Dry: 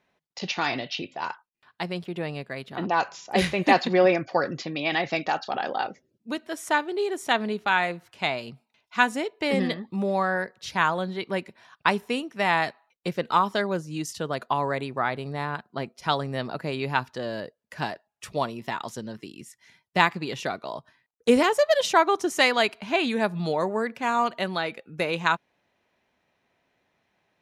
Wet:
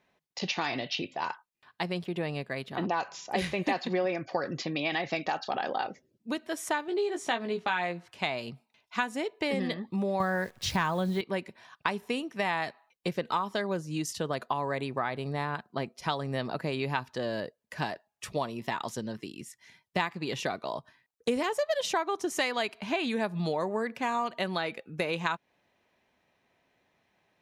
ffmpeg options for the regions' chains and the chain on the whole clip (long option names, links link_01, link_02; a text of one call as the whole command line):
ffmpeg -i in.wav -filter_complex "[0:a]asettb=1/sr,asplit=3[link_01][link_02][link_03];[link_01]atrim=end=6.884[link_04];[link_02]atrim=start=6.88:end=8.08,asetpts=PTS-STARTPTS,afade=type=in:duration=0.004:curve=qsin,afade=type=out:start_time=1.196:duration=0.004:curve=qsin,deesser=0.35,highpass=110,lowpass=7800,asplit=2[link_05][link_06];[link_06]adelay=17,volume=-6.5dB[link_07];[link_05][link_07]amix=inputs=2:normalize=0,atrim=end_sample=52920[link_08];[link_03]atrim=start=8.076[link_09];[link_04][link_08]acrossfade=duration=0.004:curve1=hsin:curve2=qsin[link_10];[link_10][link_09]acrossfade=duration=0.004:curve1=qsin:curve2=hsin,asettb=1/sr,asplit=3[link_11][link_12][link_13];[link_11]atrim=end=10.204[link_14];[link_12]atrim=start=10.2:end=11.21,asetpts=PTS-STARTPTS,afade=type=in:duration=0.004:curve=qsin,afade=type=out:start_time=1.006:duration=0.004:curve=qsin,equalizer=frequency=81:width_type=o:width=1.8:gain=14,acontrast=44,acrusher=bits=8:dc=4:mix=0:aa=0.000001[link_15];[link_13]atrim=start=11.206[link_16];[link_14][link_15]acrossfade=duration=0.004:curve1=hsin:curve2=qsin[link_17];[link_17][link_16]acrossfade=duration=0.004:curve1=qsin:curve2=hsin,bandreject=frequency=1400:width=16,acompressor=threshold=-27dB:ratio=4" out.wav